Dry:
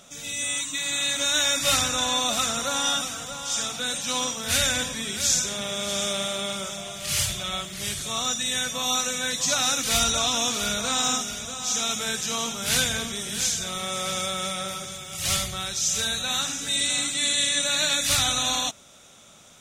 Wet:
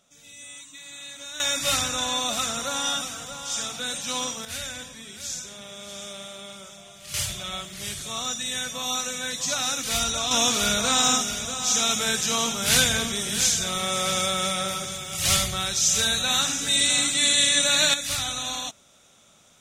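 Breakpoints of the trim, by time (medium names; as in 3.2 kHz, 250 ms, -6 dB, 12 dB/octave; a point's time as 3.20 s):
-14.5 dB
from 1.40 s -2 dB
from 4.45 s -11 dB
from 7.14 s -3 dB
from 10.31 s +3.5 dB
from 17.94 s -5.5 dB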